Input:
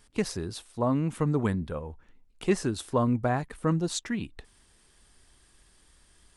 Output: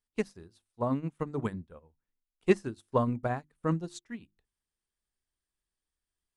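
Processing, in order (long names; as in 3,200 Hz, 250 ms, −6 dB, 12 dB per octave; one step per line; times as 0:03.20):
mains-hum notches 50/100/150/200/250/300/350 Hz
expander for the loud parts 2.5 to 1, over −42 dBFS
level +3.5 dB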